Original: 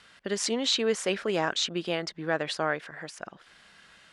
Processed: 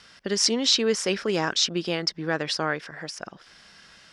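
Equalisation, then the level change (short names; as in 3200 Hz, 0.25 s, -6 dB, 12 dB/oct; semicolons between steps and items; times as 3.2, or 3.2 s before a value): low shelf 390 Hz +3.5 dB; bell 5300 Hz +12.5 dB 0.36 oct; dynamic EQ 650 Hz, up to -5 dB, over -40 dBFS, Q 2.8; +2.0 dB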